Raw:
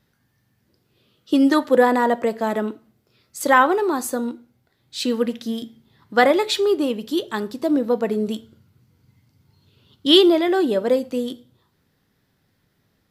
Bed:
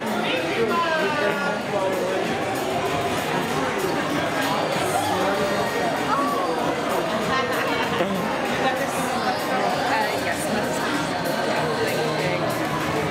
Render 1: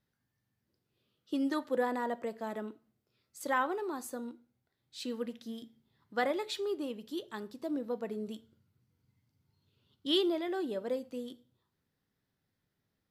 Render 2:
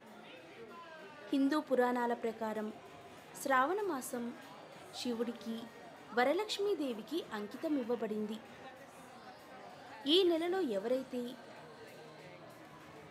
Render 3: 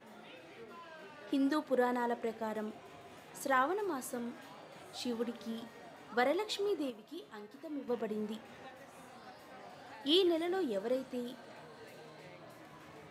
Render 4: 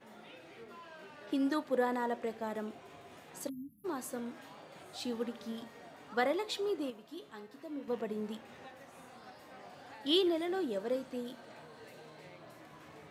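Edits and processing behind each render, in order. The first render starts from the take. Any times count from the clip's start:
trim -16 dB
add bed -30 dB
6.90–7.88 s: feedback comb 140 Hz, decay 0.4 s, mix 70%
3.49–3.85 s: spectral selection erased 290–10000 Hz

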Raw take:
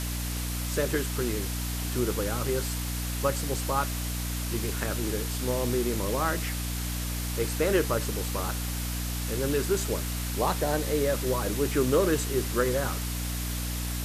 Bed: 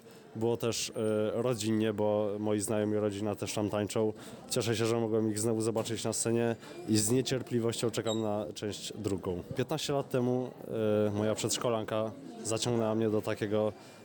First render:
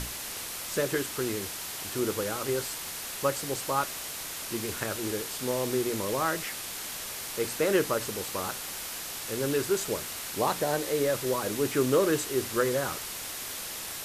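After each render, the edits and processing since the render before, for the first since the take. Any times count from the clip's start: hum notches 60/120/180/240/300 Hz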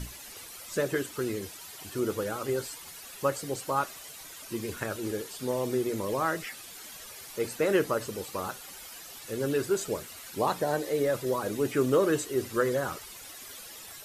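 noise reduction 12 dB, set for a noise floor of -38 dBFS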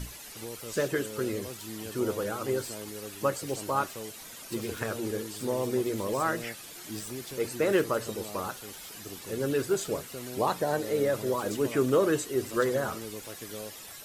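add bed -11.5 dB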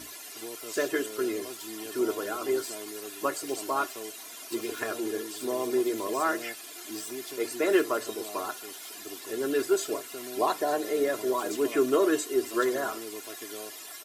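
high-pass 280 Hz 12 dB/octave; comb 2.9 ms, depth 70%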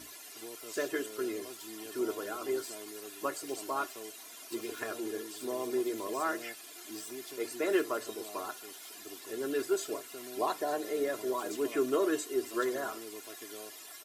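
trim -5.5 dB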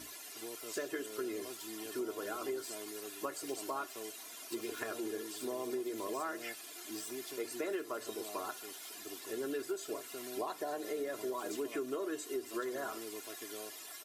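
compression 6:1, threshold -35 dBFS, peak gain reduction 12 dB

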